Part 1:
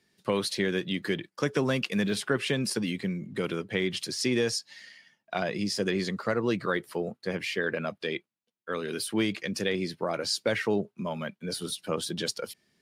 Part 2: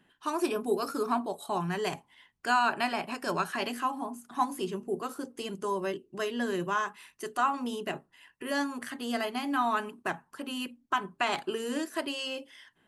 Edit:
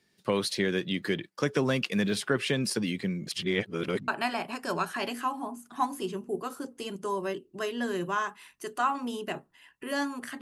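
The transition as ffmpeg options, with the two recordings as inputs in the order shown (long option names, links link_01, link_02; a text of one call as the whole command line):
ffmpeg -i cue0.wav -i cue1.wav -filter_complex "[0:a]apad=whole_dur=10.41,atrim=end=10.41,asplit=2[link_01][link_02];[link_01]atrim=end=3.272[link_03];[link_02]atrim=start=3.268:end=4.082,asetpts=PTS-STARTPTS,areverse[link_04];[1:a]atrim=start=2.668:end=9[link_05];[link_03][link_04]acrossfade=duration=0.004:curve1=hsin:curve2=hsin[link_06];[link_06][link_05]acrossfade=duration=0.004:curve1=hsin:curve2=hsin" out.wav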